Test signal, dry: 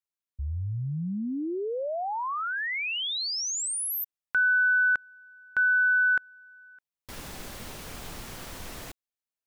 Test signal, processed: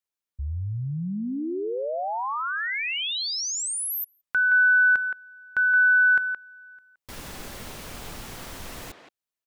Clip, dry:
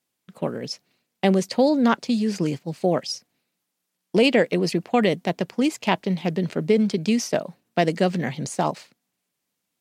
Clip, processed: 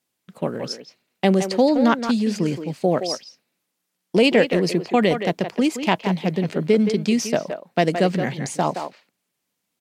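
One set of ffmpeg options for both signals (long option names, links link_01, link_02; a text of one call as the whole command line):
ffmpeg -i in.wav -filter_complex "[0:a]asplit=2[link_01][link_02];[link_02]adelay=170,highpass=300,lowpass=3400,asoftclip=type=hard:threshold=-12dB,volume=-7dB[link_03];[link_01][link_03]amix=inputs=2:normalize=0,volume=1.5dB" out.wav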